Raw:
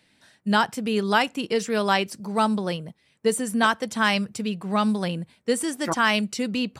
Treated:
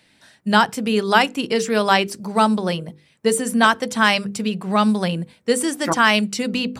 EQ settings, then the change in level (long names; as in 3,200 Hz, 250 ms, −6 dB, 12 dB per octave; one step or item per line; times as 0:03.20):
mains-hum notches 50/100/150/200/250/300/350/400/450/500 Hz
+5.5 dB